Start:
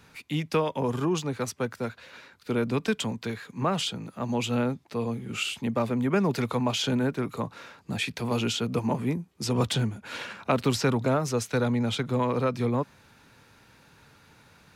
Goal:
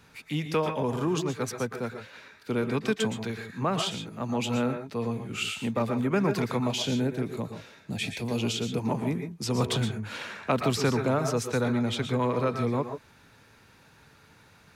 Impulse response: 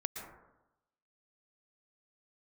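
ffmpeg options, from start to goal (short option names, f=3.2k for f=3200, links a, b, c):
-filter_complex "[0:a]asettb=1/sr,asplit=3[a][b][c];[a]atrim=end=6.664[d];[b]atrim=start=6.66:end=8.8,asetpts=PTS-STARTPTS,afade=t=in:d=0.004:c=qsin,afade=t=out:st=2.136:d=0.004:c=qsin,equalizer=f=1.2k:w=1.3:g=-9[e];[c]atrim=start=8.796[f];[d][e]acrossfade=d=0.004:c1=hsin:c2=qsin[g];[g][f]acrossfade=d=0.004:c1=qsin:c2=hsin[h];[1:a]atrim=start_sample=2205,afade=t=out:st=0.2:d=0.01,atrim=end_sample=9261[i];[h][i]afir=irnorm=-1:irlink=0"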